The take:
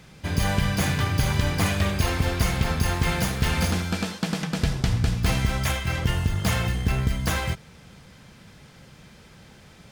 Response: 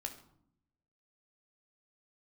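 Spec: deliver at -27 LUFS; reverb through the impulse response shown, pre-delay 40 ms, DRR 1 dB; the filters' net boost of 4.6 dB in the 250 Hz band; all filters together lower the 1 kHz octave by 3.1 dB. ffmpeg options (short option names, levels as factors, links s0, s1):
-filter_complex "[0:a]equalizer=f=250:t=o:g=7,equalizer=f=1000:t=o:g=-4.5,asplit=2[s0][s1];[1:a]atrim=start_sample=2205,adelay=40[s2];[s1][s2]afir=irnorm=-1:irlink=0,volume=1.12[s3];[s0][s3]amix=inputs=2:normalize=0,volume=0.501"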